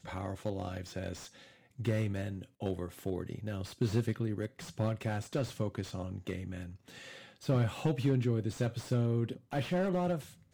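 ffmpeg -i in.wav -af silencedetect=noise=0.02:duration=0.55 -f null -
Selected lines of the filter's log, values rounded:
silence_start: 1.13
silence_end: 1.80 | silence_duration: 0.67
silence_start: 6.63
silence_end: 7.49 | silence_duration: 0.86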